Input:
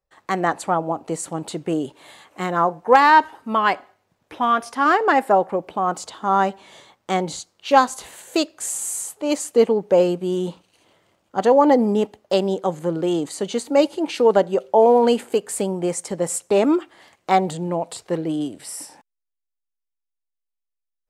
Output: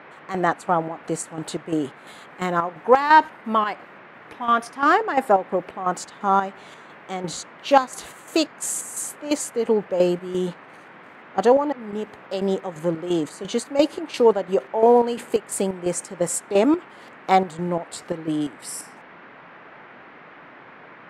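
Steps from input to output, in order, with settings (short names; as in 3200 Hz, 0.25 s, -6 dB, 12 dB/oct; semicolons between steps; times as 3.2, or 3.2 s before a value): chopper 2.9 Hz, depth 65%, duty 55%; 11.43–11.93 auto swell 0.762 s; band noise 140–2000 Hz -45 dBFS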